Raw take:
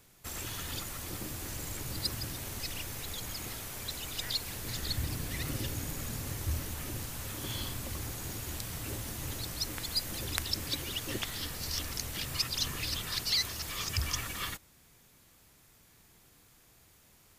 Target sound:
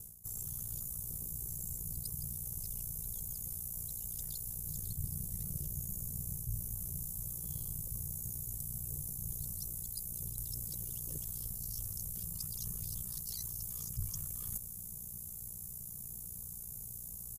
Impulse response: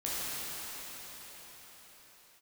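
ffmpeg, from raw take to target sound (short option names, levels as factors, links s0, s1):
-af "firequalizer=gain_entry='entry(160,0);entry(260,-20);entry(390,-12);entry(2000,-30);entry(4300,-18);entry(6600,1);entry(11000,14)':delay=0.05:min_phase=1,aeval=exprs='val(0)*sin(2*PI*30*n/s)':c=same,areverse,acompressor=threshold=0.00355:ratio=12,areverse,highshelf=f=8500:g=-10,volume=7.5"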